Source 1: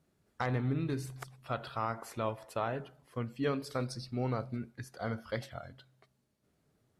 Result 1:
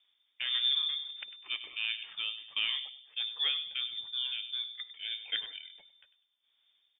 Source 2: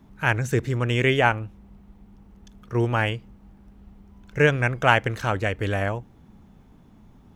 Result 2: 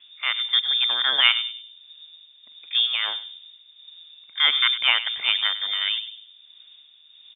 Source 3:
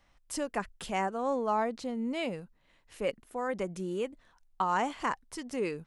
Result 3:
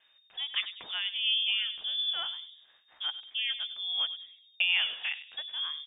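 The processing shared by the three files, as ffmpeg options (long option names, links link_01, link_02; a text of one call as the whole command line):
ffmpeg -i in.wav -filter_complex "[0:a]tremolo=f=1.5:d=0.49,asplit=2[link_01][link_02];[link_02]adelay=99,lowpass=frequency=870:poles=1,volume=-9dB,asplit=2[link_03][link_04];[link_04]adelay=99,lowpass=frequency=870:poles=1,volume=0.46,asplit=2[link_05][link_06];[link_06]adelay=99,lowpass=frequency=870:poles=1,volume=0.46,asplit=2[link_07][link_08];[link_08]adelay=99,lowpass=frequency=870:poles=1,volume=0.46,asplit=2[link_09][link_10];[link_10]adelay=99,lowpass=frequency=870:poles=1,volume=0.46[link_11];[link_01][link_03][link_05][link_07][link_09][link_11]amix=inputs=6:normalize=0,lowpass=frequency=3100:width_type=q:width=0.5098,lowpass=frequency=3100:width_type=q:width=0.6013,lowpass=frequency=3100:width_type=q:width=0.9,lowpass=frequency=3100:width_type=q:width=2.563,afreqshift=-3700,volume=2dB" out.wav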